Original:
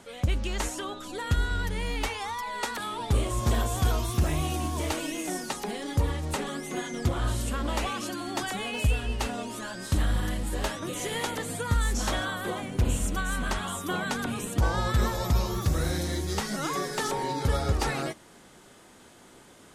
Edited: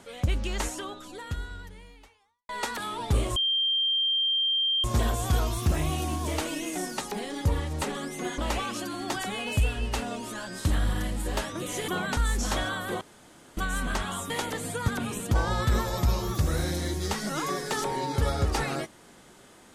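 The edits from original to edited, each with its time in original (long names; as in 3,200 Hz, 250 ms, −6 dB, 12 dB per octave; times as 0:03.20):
0:00.66–0:02.49: fade out quadratic
0:03.36: insert tone 3,170 Hz −22.5 dBFS 1.48 s
0:06.90–0:07.65: remove
0:11.15–0:11.73: swap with 0:13.86–0:14.15
0:12.57–0:13.13: fill with room tone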